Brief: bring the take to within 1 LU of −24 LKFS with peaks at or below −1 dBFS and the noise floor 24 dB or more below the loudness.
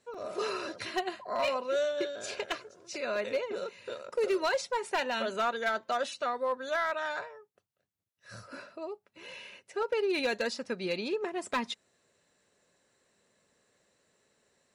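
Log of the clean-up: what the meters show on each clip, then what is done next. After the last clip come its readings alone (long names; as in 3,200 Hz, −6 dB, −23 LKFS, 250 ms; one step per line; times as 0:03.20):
share of clipped samples 0.7%; peaks flattened at −23.5 dBFS; number of dropouts 1; longest dropout 4.1 ms; integrated loudness −33.0 LKFS; sample peak −23.5 dBFS; target loudness −24.0 LKFS
→ clipped peaks rebuilt −23.5 dBFS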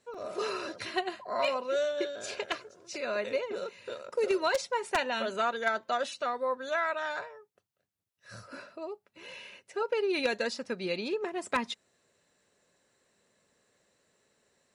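share of clipped samples 0.0%; number of dropouts 1; longest dropout 4.1 ms
→ repair the gap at 0:00.14, 4.1 ms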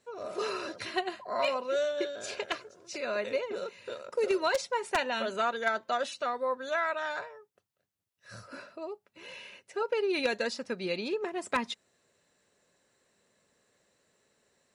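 number of dropouts 0; integrated loudness −32.5 LKFS; sample peak −14.5 dBFS; target loudness −24.0 LKFS
→ level +8.5 dB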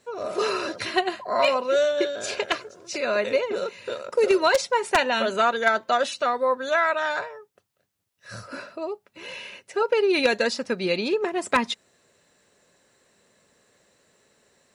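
integrated loudness −24.0 LKFS; sample peak −6.0 dBFS; background noise floor −72 dBFS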